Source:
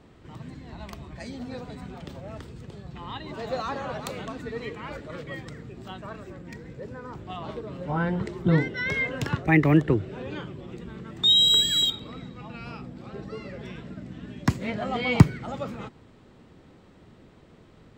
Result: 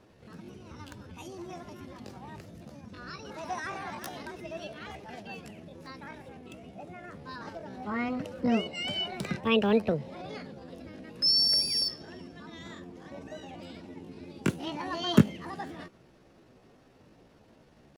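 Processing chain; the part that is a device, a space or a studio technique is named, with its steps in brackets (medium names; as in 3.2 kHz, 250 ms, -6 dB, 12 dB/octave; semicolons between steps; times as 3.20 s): chipmunk voice (pitch shift +6 st); trim -5.5 dB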